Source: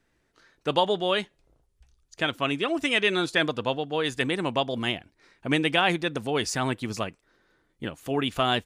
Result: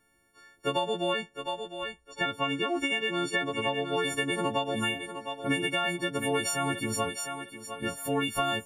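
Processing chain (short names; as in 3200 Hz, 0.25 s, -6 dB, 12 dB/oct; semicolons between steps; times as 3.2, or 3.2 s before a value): frequency quantiser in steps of 4 st; 1.13–3.9 air absorption 61 m; thinning echo 0.707 s, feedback 27%, high-pass 280 Hz, level -11 dB; compressor 6:1, threshold -23 dBFS, peak gain reduction 10 dB; bell 4500 Hz -10 dB 1.3 oct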